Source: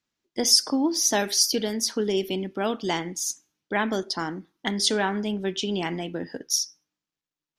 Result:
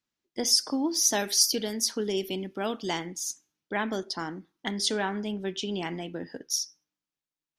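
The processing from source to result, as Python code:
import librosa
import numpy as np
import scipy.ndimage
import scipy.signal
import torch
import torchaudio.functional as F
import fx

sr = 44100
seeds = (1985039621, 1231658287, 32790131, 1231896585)

y = fx.high_shelf(x, sr, hz=4900.0, db=6.0, at=(0.7, 3.06))
y = y * librosa.db_to_amplitude(-4.5)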